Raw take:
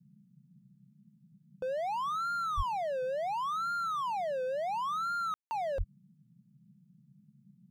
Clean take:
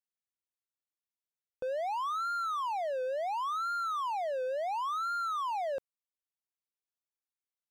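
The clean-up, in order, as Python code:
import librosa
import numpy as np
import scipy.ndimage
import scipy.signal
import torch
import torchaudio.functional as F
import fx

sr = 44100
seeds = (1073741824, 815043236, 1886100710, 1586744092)

y = fx.highpass(x, sr, hz=140.0, slope=24, at=(2.56, 2.68), fade=0.02)
y = fx.highpass(y, sr, hz=140.0, slope=24, at=(5.77, 5.89), fade=0.02)
y = fx.fix_ambience(y, sr, seeds[0], print_start_s=6.11, print_end_s=6.61, start_s=5.34, end_s=5.51)
y = fx.noise_reduce(y, sr, print_start_s=6.11, print_end_s=6.61, reduce_db=30.0)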